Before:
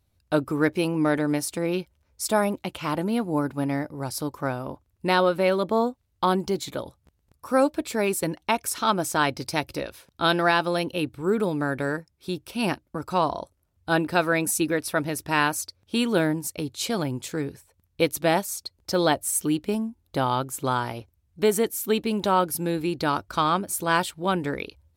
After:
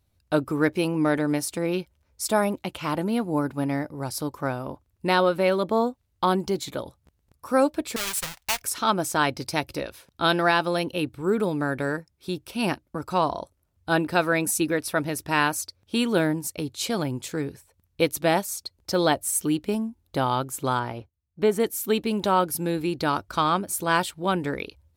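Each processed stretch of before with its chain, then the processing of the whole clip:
7.96–8.62 half-waves squared off + passive tone stack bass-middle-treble 10-0-10
20.79–21.6 gate -54 dBFS, range -14 dB + high shelf 3900 Hz -12 dB
whole clip: dry

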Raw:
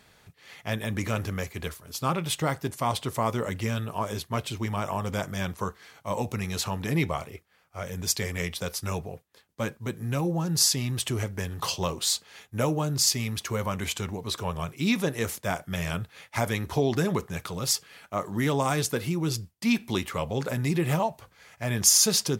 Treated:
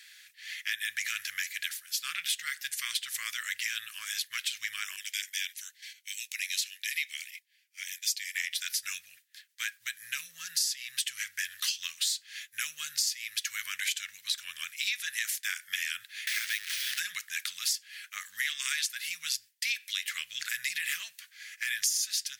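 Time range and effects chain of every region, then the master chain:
4.96–8.35 inverse Chebyshev high-pass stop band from 780 Hz, stop band 50 dB + gate -56 dBFS, range -8 dB
16.27–17 delta modulation 64 kbps, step -27 dBFS + careless resampling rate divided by 3×, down filtered, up hold + low shelf 150 Hz -7 dB
18.45–18.91 bell 2800 Hz +5.5 dB 2.4 oct + notch 510 Hz, Q 5.6 + de-hum 195.8 Hz, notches 16
whole clip: elliptic high-pass 1700 Hz, stop band 50 dB; compressor 6:1, threshold -37 dBFS; gain +8.5 dB

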